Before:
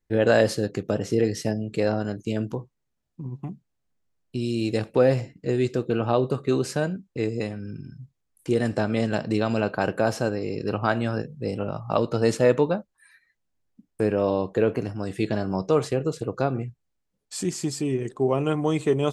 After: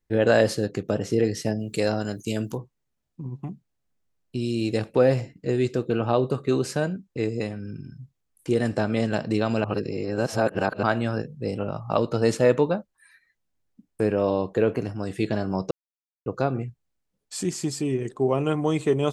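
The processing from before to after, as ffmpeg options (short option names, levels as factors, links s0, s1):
-filter_complex "[0:a]asettb=1/sr,asplit=3[s0][s1][s2];[s0]atrim=end=1.594[s3];[s1]atrim=start=1.59:end=2.58,asetpts=PTS-STARTPTS,afade=t=in:d=0.004:c=qsin,afade=t=out:st=0.986:d=0.004:c=qsin,aemphasis=mode=production:type=75fm[s4];[s2]atrim=start=2.576[s5];[s3][s4]acrossfade=d=0.004:c1=hsin:c2=qsin[s6];[s6][s5]acrossfade=d=0.004:c1=qsin:c2=hsin,asplit=5[s7][s8][s9][s10][s11];[s7]atrim=end=9.642[s12];[s8]atrim=start=9.638:end=10.832,asetpts=PTS-STARTPTS,areverse[s13];[s9]atrim=start=10.828:end=15.71,asetpts=PTS-STARTPTS,afade=t=out:st=4.878:d=0.004:c=hsin[s14];[s10]atrim=start=15.71:end=16.26,asetpts=PTS-STARTPTS,volume=0[s15];[s11]atrim=start=16.26,asetpts=PTS-STARTPTS,afade=t=in:d=0.004:c=hsin[s16];[s12][s13]acrossfade=d=0.004:c1=hsin:c2=hsin[s17];[s14][s15][s16]concat=n=3:v=0:a=1[s18];[s17][s18]acrossfade=d=0.004:c1=hsin:c2=hsin"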